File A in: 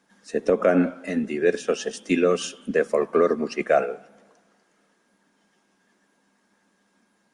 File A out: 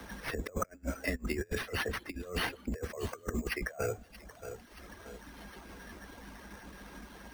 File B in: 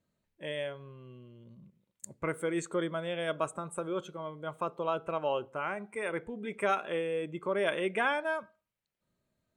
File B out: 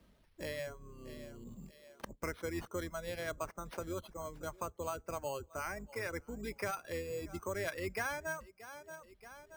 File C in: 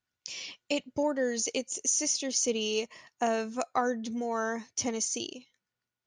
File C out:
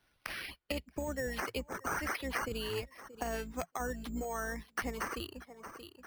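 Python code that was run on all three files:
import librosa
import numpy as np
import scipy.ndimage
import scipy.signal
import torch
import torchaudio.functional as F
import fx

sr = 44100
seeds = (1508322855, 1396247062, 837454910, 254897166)

p1 = fx.octave_divider(x, sr, octaves=2, level_db=1.0)
p2 = fx.peak_eq(p1, sr, hz=130.0, db=-6.0, octaves=0.34)
p3 = fx.over_compress(p2, sr, threshold_db=-27.0, ratio=-0.5)
p4 = p3 + fx.echo_thinned(p3, sr, ms=628, feedback_pct=23, hz=180.0, wet_db=-20, dry=0)
p5 = fx.dereverb_blind(p4, sr, rt60_s=0.66)
p6 = np.repeat(p5[::6], 6)[:len(p5)]
p7 = fx.dynamic_eq(p6, sr, hz=1900.0, q=1.9, threshold_db=-46.0, ratio=4.0, max_db=6)
p8 = fx.band_squash(p7, sr, depth_pct=70)
y = F.gain(torch.from_numpy(p8), -7.5).numpy()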